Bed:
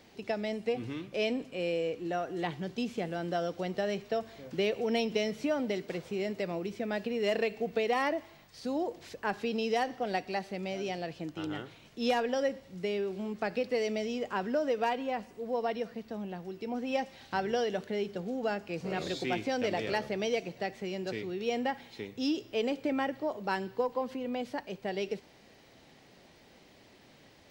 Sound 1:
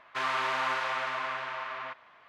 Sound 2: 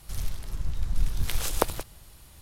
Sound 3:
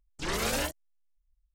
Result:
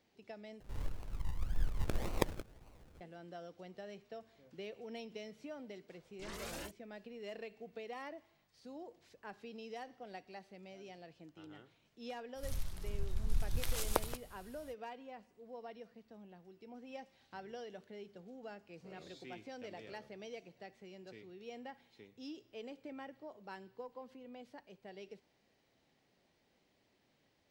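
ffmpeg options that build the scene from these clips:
ffmpeg -i bed.wav -i cue0.wav -i cue1.wav -i cue2.wav -filter_complex "[2:a]asplit=2[link_01][link_02];[0:a]volume=-17dB[link_03];[link_01]acrusher=samples=36:mix=1:aa=0.000001:lfo=1:lforange=21.6:lforate=1.8[link_04];[link_03]asplit=2[link_05][link_06];[link_05]atrim=end=0.604[link_07];[link_04]atrim=end=2.41,asetpts=PTS-STARTPTS,volume=-9dB[link_08];[link_06]atrim=start=3.006[link_09];[3:a]atrim=end=1.54,asetpts=PTS-STARTPTS,volume=-16dB,afade=type=in:duration=0.004:curve=hsin,afade=type=out:start_time=1.536:duration=0.004:curve=hsin,adelay=6000[link_10];[link_02]atrim=end=2.41,asetpts=PTS-STARTPTS,volume=-8.5dB,afade=type=in:duration=0.05,afade=type=out:start_time=2.36:duration=0.05,adelay=12340[link_11];[link_07][link_08]acrossfade=duration=0.004:curve1=hsin:curve2=hsin[link_12];[link_12][link_09]acrossfade=duration=0.004:curve1=hsin:curve2=hsin[link_13];[link_13][link_10][link_11]amix=inputs=3:normalize=0" out.wav

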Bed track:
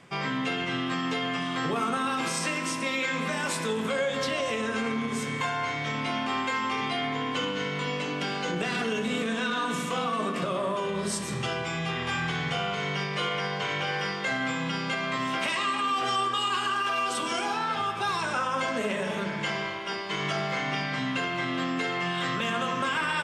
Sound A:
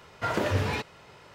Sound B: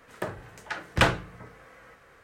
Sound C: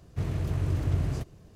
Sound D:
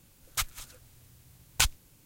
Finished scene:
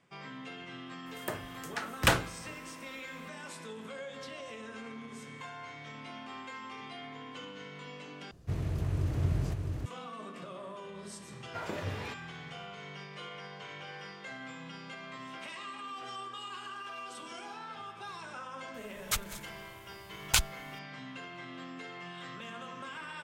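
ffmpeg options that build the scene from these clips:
ffmpeg -i bed.wav -i cue0.wav -i cue1.wav -i cue2.wav -i cue3.wav -filter_complex "[0:a]volume=-15.5dB[link_01];[2:a]aemphasis=mode=production:type=50fm[link_02];[3:a]aecho=1:1:660:0.596[link_03];[link_01]asplit=2[link_04][link_05];[link_04]atrim=end=8.314[link_06];[link_03]atrim=end=1.55,asetpts=PTS-STARTPTS,volume=-3.5dB[link_07];[link_05]atrim=start=9.856[link_08];[link_02]atrim=end=2.23,asetpts=PTS-STARTPTS,volume=-4.5dB,afade=type=in:duration=0.004:curve=hsin,afade=type=out:start_time=2.226:duration=0.004:curve=hsin,adelay=1060[link_09];[1:a]atrim=end=1.34,asetpts=PTS-STARTPTS,volume=-11dB,afade=type=in:duration=0.004:curve=hsin,afade=type=out:start_time=1.336:duration=0.004:curve=hsin,adelay=11320[link_10];[4:a]atrim=end=2.05,asetpts=PTS-STARTPTS,volume=-1dB,afade=type=in:duration=0.004:curve=hsin,afade=type=out:start_time=2.046:duration=0.004:curve=hsin,adelay=18740[link_11];[link_06][link_07]acrossfade=duration=0.004:curve1=hsin:curve2=hsin[link_12];[link_12][link_08]acrossfade=duration=0.004:curve1=hsin:curve2=hsin[link_13];[link_13][link_09][link_10][link_11]amix=inputs=4:normalize=0" out.wav

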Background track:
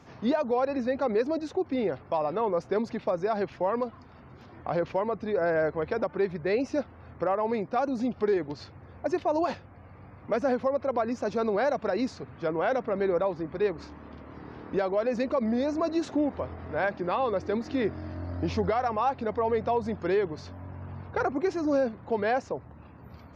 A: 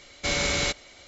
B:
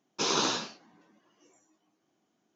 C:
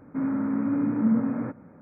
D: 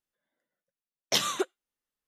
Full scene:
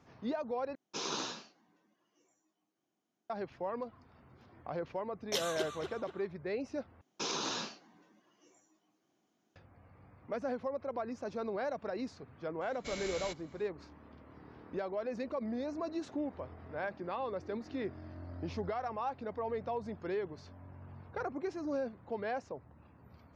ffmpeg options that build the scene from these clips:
ffmpeg -i bed.wav -i cue0.wav -i cue1.wav -i cue2.wav -i cue3.wav -filter_complex "[2:a]asplit=2[link_01][link_02];[0:a]volume=-10.5dB[link_03];[4:a]asplit=2[link_04][link_05];[link_05]adelay=240,lowpass=frequency=3000:poles=1,volume=-4.5dB,asplit=2[link_06][link_07];[link_07]adelay=240,lowpass=frequency=3000:poles=1,volume=0.53,asplit=2[link_08][link_09];[link_09]adelay=240,lowpass=frequency=3000:poles=1,volume=0.53,asplit=2[link_10][link_11];[link_11]adelay=240,lowpass=frequency=3000:poles=1,volume=0.53,asplit=2[link_12][link_13];[link_13]adelay=240,lowpass=frequency=3000:poles=1,volume=0.53,asplit=2[link_14][link_15];[link_15]adelay=240,lowpass=frequency=3000:poles=1,volume=0.53,asplit=2[link_16][link_17];[link_17]adelay=240,lowpass=frequency=3000:poles=1,volume=0.53[link_18];[link_04][link_06][link_08][link_10][link_12][link_14][link_16][link_18]amix=inputs=8:normalize=0[link_19];[link_02]alimiter=level_in=1dB:limit=-24dB:level=0:latency=1:release=48,volume=-1dB[link_20];[link_03]asplit=3[link_21][link_22][link_23];[link_21]atrim=end=0.754[link_24];[link_01]atrim=end=2.55,asetpts=PTS-STARTPTS,volume=-10dB[link_25];[link_22]atrim=start=3.296:end=7.014[link_26];[link_20]atrim=end=2.55,asetpts=PTS-STARTPTS,volume=-2dB[link_27];[link_23]atrim=start=9.556[link_28];[link_19]atrim=end=2.07,asetpts=PTS-STARTPTS,volume=-10dB,afade=type=in:duration=0.004:curve=hsin,afade=type=out:start_time=2.066:duration=0.004:curve=hsin,adelay=4200[link_29];[1:a]atrim=end=1.07,asetpts=PTS-STARTPTS,volume=-17.5dB,afade=type=in:duration=0.004:curve=hsin,afade=type=out:start_time=1.066:duration=0.004:curve=hsin,adelay=12610[link_30];[link_24][link_25]acrossfade=duration=0.004:curve1=hsin:curve2=hsin[link_31];[link_31][link_26]acrossfade=duration=0.004:curve1=hsin:curve2=hsin[link_32];[link_32][link_27]acrossfade=duration=0.004:curve1=hsin:curve2=hsin[link_33];[link_33][link_28]acrossfade=duration=0.004:curve1=hsin:curve2=hsin[link_34];[link_34][link_29][link_30]amix=inputs=3:normalize=0" out.wav

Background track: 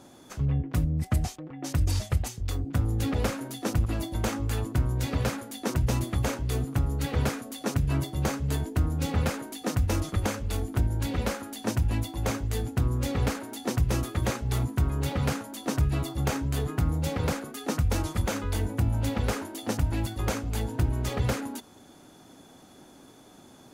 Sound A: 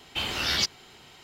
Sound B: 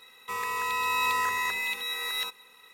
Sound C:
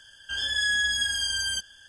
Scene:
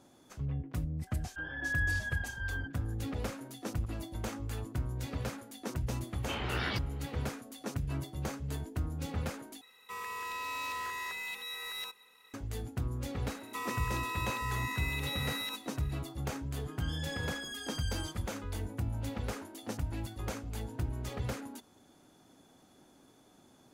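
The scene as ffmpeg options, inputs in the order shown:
ffmpeg -i bed.wav -i cue0.wav -i cue1.wav -i cue2.wav -filter_complex "[3:a]asplit=2[link_01][link_02];[2:a]asplit=2[link_03][link_04];[0:a]volume=-9.5dB[link_05];[link_01]lowpass=frequency=1500:width=0.5412,lowpass=frequency=1500:width=1.3066[link_06];[1:a]lowpass=1900[link_07];[link_03]asoftclip=type=tanh:threshold=-27dB[link_08];[link_04]acompressor=threshold=-31dB:ratio=6:attack=3.2:release=140:knee=1:detection=peak[link_09];[link_02]asoftclip=type=tanh:threshold=-22.5dB[link_10];[link_05]asplit=2[link_11][link_12];[link_11]atrim=end=9.614[link_13];[link_08]atrim=end=2.73,asetpts=PTS-STARTPTS,volume=-7dB[link_14];[link_12]atrim=start=12.336[link_15];[link_06]atrim=end=1.88,asetpts=PTS-STARTPTS,volume=-1.5dB,afade=type=in:duration=0.004:curve=hsin,afade=type=out:start_time=1.876:duration=0.004:curve=hsin,adelay=1070[link_16];[link_07]atrim=end=1.23,asetpts=PTS-STARTPTS,volume=-2.5dB,afade=type=in:duration=0.004:curve=hsin,afade=type=out:start_time=1.226:duration=0.004:curve=hsin,adelay=6130[link_17];[link_09]atrim=end=2.73,asetpts=PTS-STARTPTS,volume=-3dB,afade=type=in:duration=0.004:curve=hsin,afade=type=out:start_time=2.726:duration=0.004:curve=hsin,adelay=13260[link_18];[link_10]atrim=end=1.88,asetpts=PTS-STARTPTS,volume=-14.5dB,afade=type=in:duration=0.004:curve=hsin,afade=type=out:start_time=1.876:duration=0.004:curve=hsin,adelay=16510[link_19];[link_13][link_14]acrossfade=duration=0.004:curve1=hsin:curve2=hsin[link_20];[link_20][link_15]acrossfade=duration=0.004:curve1=hsin:curve2=hsin[link_21];[link_21][link_16][link_17][link_18][link_19]amix=inputs=5:normalize=0" out.wav

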